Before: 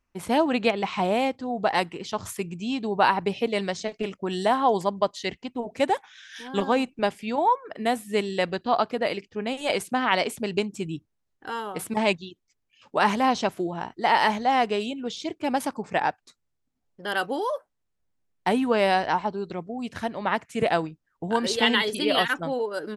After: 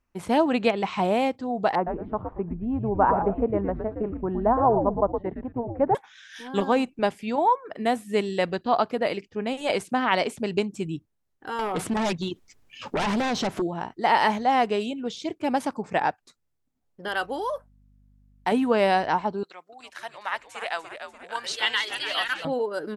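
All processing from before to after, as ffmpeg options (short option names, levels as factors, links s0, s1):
-filter_complex "[0:a]asettb=1/sr,asplit=3[s0][s1][s2];[s0]atrim=end=1.754[s3];[s1]atrim=start=1.75:end=5.95,asetpts=PTS-STARTPTS,afade=t=in:d=0.004:c=qsin,afade=t=out:st=4.196:d=0.004:c=qsin,lowpass=f=1300:w=0.5412,lowpass=f=1300:w=1.3066,asplit=5[s4][s5][s6][s7][s8];[s5]adelay=114,afreqshift=-140,volume=0.501[s9];[s6]adelay=228,afreqshift=-280,volume=0.155[s10];[s7]adelay=342,afreqshift=-420,volume=0.0484[s11];[s8]adelay=456,afreqshift=-560,volume=0.015[s12];[s4][s9][s10][s11][s12]amix=inputs=5:normalize=0,atrim=end_sample=185220[s13];[s2]atrim=start=5.946[s14];[s3][s13]acrossfade=d=0.004:c1=hsin:c2=qsin[s15];[s15][s14]acrossfade=d=0.004:c1=qsin:c2=hsin,asettb=1/sr,asplit=3[s16][s17][s18];[s16]atrim=end=11.594[s19];[s17]atrim=start=11.59:end=13.62,asetpts=PTS-STARTPTS,afade=t=in:d=0.004:c=qsin,afade=t=out:st=2.026:d=0.004:c=qsin,highshelf=f=8500:g=-5,acompressor=threshold=0.00447:ratio=2:attack=3.2:release=140:knee=1:detection=peak,aeval=exprs='0.0794*sin(PI/2*5.01*val(0)/0.0794)':c=same[s20];[s18]atrim=start=13.616[s21];[s19][s20]acrossfade=d=0.004:c1=hsin:c2=qsin[s22];[s22][s21]acrossfade=d=0.004:c1=qsin:c2=hsin,asettb=1/sr,asplit=3[s23][s24][s25];[s23]atrim=end=17.084[s26];[s24]atrim=start=17.08:end=18.52,asetpts=PTS-STARTPTS,afade=t=in:d=0.004:c=qsin,afade=t=out:st=1.436:d=0.004:c=qsin,lowshelf=f=340:g=-9.5,aeval=exprs='val(0)+0.00126*(sin(2*PI*50*n/s)+sin(2*PI*2*50*n/s)/2+sin(2*PI*3*50*n/s)/3+sin(2*PI*4*50*n/s)/4+sin(2*PI*5*50*n/s)/5)':c=same[s27];[s25]atrim=start=18.516[s28];[s26][s27]acrossfade=d=0.004:c1=hsin:c2=qsin[s29];[s29][s28]acrossfade=d=0.004:c1=qsin:c2=hsin,asettb=1/sr,asplit=3[s30][s31][s32];[s30]atrim=end=19.434[s33];[s31]atrim=start=19.43:end=22.45,asetpts=PTS-STARTPTS,afade=t=in:d=0.004:c=qsin,afade=t=out:st=3.016:d=0.004:c=qsin,highpass=1200,asplit=7[s34][s35][s36][s37][s38][s39][s40];[s35]adelay=292,afreqshift=-100,volume=0.355[s41];[s36]adelay=584,afreqshift=-200,volume=0.178[s42];[s37]adelay=876,afreqshift=-300,volume=0.0891[s43];[s38]adelay=1168,afreqshift=-400,volume=0.0442[s44];[s39]adelay=1460,afreqshift=-500,volume=0.0221[s45];[s40]adelay=1752,afreqshift=-600,volume=0.0111[s46];[s34][s41][s42][s43][s44][s45][s46]amix=inputs=7:normalize=0,atrim=end_sample=133182[s47];[s32]atrim=start=22.446[s48];[s33][s47]acrossfade=d=0.004:c1=hsin:c2=qsin[s49];[s49][s48]acrossfade=d=0.004:c1=qsin:c2=hsin,aemphasis=mode=production:type=cd,acrossover=split=9200[s50][s51];[s51]acompressor=threshold=0.00316:ratio=4:attack=1:release=60[s52];[s50][s52]amix=inputs=2:normalize=0,highshelf=f=2800:g=-10.5,volume=1.19"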